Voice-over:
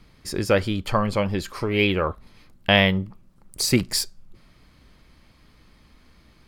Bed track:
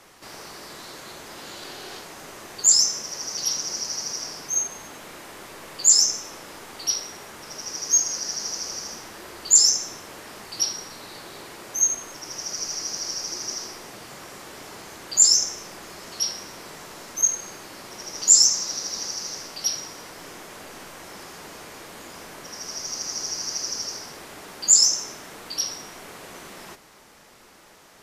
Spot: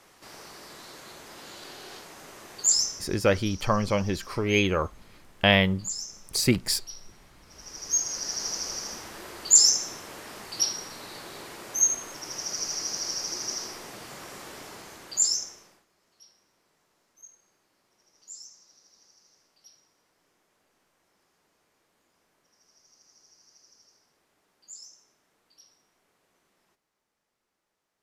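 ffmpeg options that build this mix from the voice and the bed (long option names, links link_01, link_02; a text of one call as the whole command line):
ffmpeg -i stem1.wav -i stem2.wav -filter_complex "[0:a]adelay=2750,volume=-2.5dB[link_01];[1:a]volume=11dB,afade=type=out:start_time=2.73:duration=0.49:silence=0.237137,afade=type=in:start_time=7.46:duration=0.98:silence=0.149624,afade=type=out:start_time=14.48:duration=1.37:silence=0.0375837[link_02];[link_01][link_02]amix=inputs=2:normalize=0" out.wav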